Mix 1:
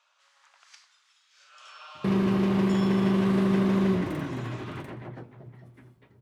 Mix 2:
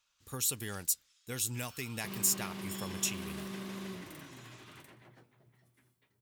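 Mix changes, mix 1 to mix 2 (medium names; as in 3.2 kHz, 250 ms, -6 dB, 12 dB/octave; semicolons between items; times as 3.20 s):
speech: unmuted; master: add pre-emphasis filter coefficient 0.9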